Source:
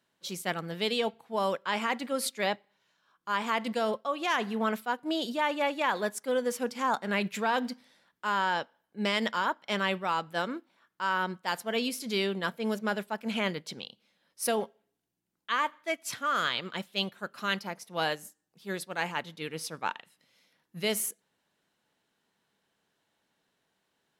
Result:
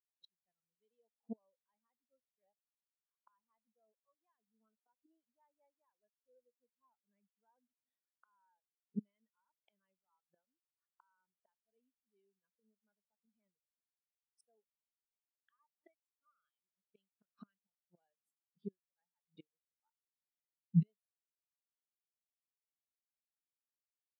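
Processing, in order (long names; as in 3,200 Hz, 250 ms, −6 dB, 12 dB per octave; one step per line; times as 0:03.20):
gate with flip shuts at −32 dBFS, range −32 dB
every bin expanded away from the loudest bin 2.5 to 1
level +9 dB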